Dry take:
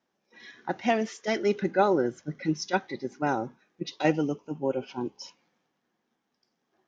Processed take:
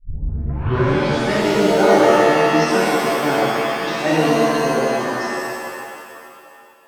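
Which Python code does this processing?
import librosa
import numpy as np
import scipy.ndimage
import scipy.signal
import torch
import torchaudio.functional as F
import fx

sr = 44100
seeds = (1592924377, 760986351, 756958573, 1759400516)

y = fx.tape_start_head(x, sr, length_s=1.41)
y = fx.rev_shimmer(y, sr, seeds[0], rt60_s=2.2, semitones=7, shimmer_db=-2, drr_db=-7.5)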